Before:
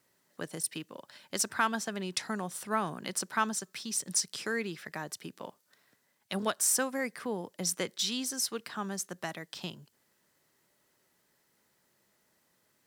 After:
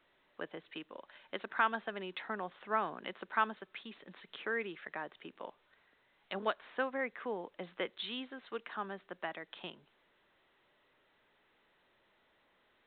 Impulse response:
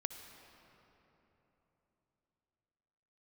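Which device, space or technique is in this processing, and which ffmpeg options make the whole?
telephone: -af "highpass=340,lowpass=3.2k,volume=-1.5dB" -ar 8000 -c:a pcm_alaw

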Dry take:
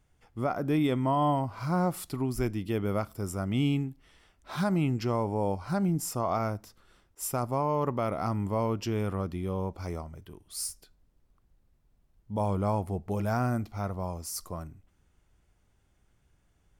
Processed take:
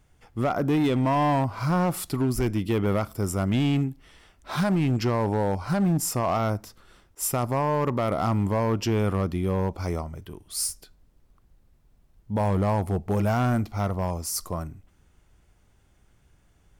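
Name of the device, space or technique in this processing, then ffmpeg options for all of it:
limiter into clipper: -af "alimiter=limit=-21dB:level=0:latency=1:release=42,asoftclip=type=hard:threshold=-25.5dB,volume=7dB"

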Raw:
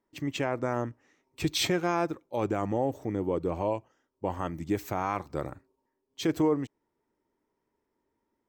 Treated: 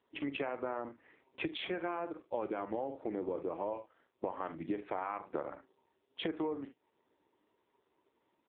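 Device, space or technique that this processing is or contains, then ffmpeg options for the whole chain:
voicemail: -filter_complex "[0:a]asplit=3[a][b][c];[a]afade=t=out:st=4.75:d=0.02[d];[b]bandreject=f=188.6:t=h:w=4,bandreject=f=377.2:t=h:w=4,afade=t=in:st=4.75:d=0.02,afade=t=out:st=5.35:d=0.02[e];[c]afade=t=in:st=5.35:d=0.02[f];[d][e][f]amix=inputs=3:normalize=0,highpass=320,lowpass=2.9k,aecho=1:1:43|72:0.251|0.141,acompressor=threshold=-41dB:ratio=8,volume=8dB" -ar 8000 -c:a libopencore_amrnb -b:a 5900

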